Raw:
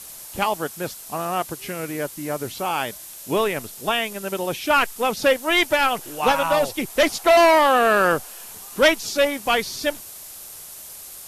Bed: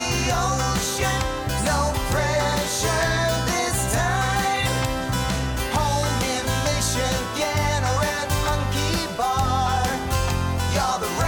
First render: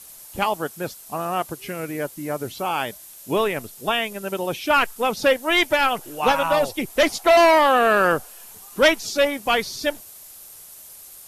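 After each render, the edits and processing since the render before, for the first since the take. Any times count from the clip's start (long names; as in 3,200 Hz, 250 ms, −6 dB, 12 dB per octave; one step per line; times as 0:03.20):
broadband denoise 6 dB, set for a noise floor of −39 dBFS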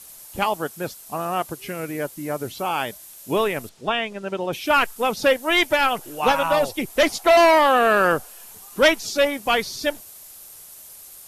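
0:03.69–0:04.53: high-frequency loss of the air 110 metres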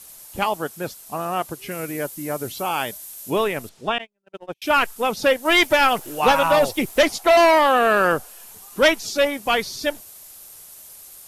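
0:01.71–0:03.30: high-shelf EQ 6,000 Hz +6.5 dB
0:03.98–0:04.62: noise gate −24 dBFS, range −45 dB
0:05.45–0:07.02: leveller curve on the samples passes 1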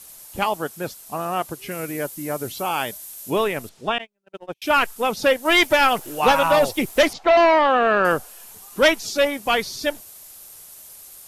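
0:07.13–0:08.05: high-frequency loss of the air 170 metres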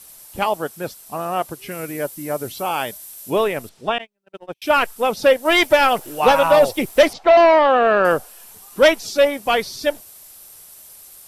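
notch filter 6,700 Hz, Q 16
dynamic equaliser 570 Hz, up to +5 dB, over −29 dBFS, Q 1.5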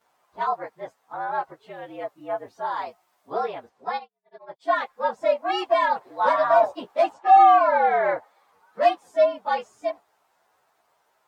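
partials spread apart or drawn together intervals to 114%
resonant band-pass 900 Hz, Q 1.3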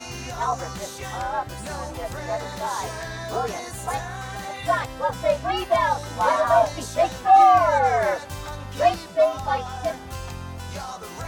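mix in bed −11.5 dB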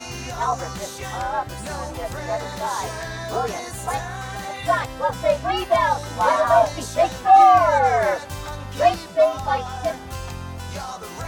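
level +2 dB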